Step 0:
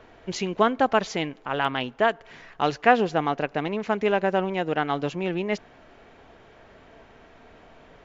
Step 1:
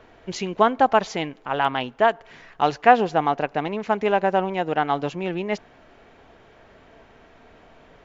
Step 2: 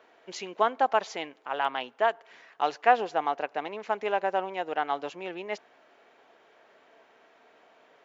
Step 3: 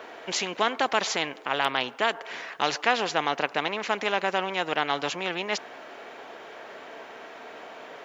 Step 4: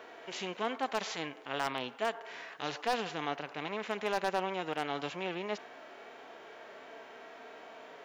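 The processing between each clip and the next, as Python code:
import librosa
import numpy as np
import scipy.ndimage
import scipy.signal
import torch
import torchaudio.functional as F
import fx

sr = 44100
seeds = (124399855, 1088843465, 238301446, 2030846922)

y1 = fx.dynamic_eq(x, sr, hz=830.0, q=1.7, threshold_db=-34.0, ratio=4.0, max_db=6)
y2 = scipy.signal.sosfilt(scipy.signal.butter(2, 410.0, 'highpass', fs=sr, output='sos'), y1)
y2 = y2 * librosa.db_to_amplitude(-6.0)
y3 = fx.spectral_comp(y2, sr, ratio=2.0)
y4 = fx.hpss(y3, sr, part='percussive', gain_db=-15)
y4 = 10.0 ** (-17.5 / 20.0) * (np.abs((y4 / 10.0 ** (-17.5 / 20.0) + 3.0) % 4.0 - 2.0) - 1.0)
y4 = y4 * librosa.db_to_amplitude(-3.5)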